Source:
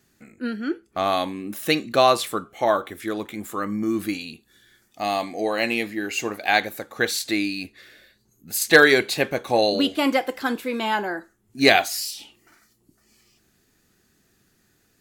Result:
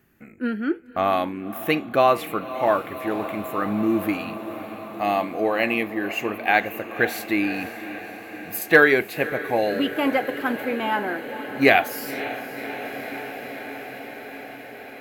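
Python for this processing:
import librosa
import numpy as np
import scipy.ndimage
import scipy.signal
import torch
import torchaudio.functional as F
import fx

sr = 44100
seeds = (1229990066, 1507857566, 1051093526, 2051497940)

y = fx.band_shelf(x, sr, hz=5900.0, db=-13.5, octaves=1.7)
y = fx.echo_diffused(y, sr, ms=545, feedback_pct=77, wet_db=-14.0)
y = fx.rider(y, sr, range_db=4, speed_s=2.0)
y = F.gain(torch.from_numpy(y), -1.0).numpy()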